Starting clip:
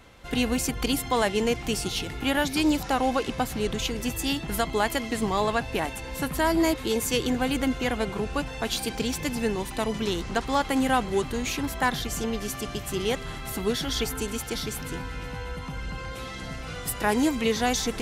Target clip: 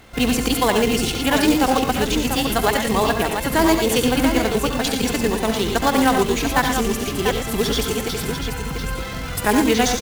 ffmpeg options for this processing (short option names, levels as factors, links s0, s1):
-af "acrusher=bits=3:mode=log:mix=0:aa=0.000001,atempo=1.8,aecho=1:1:68|90|113|692:0.316|0.316|0.355|0.447,volume=2"